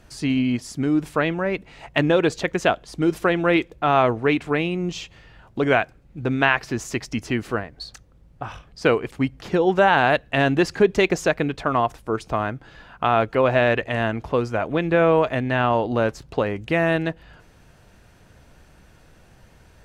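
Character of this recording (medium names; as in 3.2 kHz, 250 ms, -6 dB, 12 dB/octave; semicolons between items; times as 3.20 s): noise floor -53 dBFS; spectral tilt -4.5 dB/octave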